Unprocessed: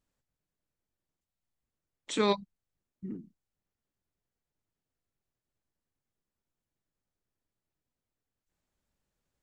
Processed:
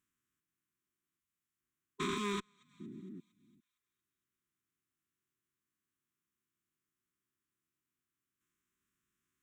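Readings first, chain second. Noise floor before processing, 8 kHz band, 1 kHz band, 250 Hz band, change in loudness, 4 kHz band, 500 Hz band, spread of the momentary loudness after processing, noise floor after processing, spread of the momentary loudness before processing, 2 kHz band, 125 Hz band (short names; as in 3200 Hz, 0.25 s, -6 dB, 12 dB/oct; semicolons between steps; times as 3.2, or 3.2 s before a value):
under -85 dBFS, -4.5 dB, -6.0 dB, -5.5 dB, -7.5 dB, -6.0 dB, -10.5 dB, 17 LU, under -85 dBFS, 17 LU, -2.0 dB, -3.5 dB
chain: stepped spectrum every 0.4 s; HPF 300 Hz 6 dB/oct; on a send: thinning echo 0.23 s, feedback 58%, high-pass 960 Hz, level -23 dB; on the sum: one-sided clip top -32.5 dBFS; bell 4500 Hz -14 dB 0.39 oct; reverb removal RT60 0.52 s; brick-wall FIR band-stop 410–1000 Hz; gain +6 dB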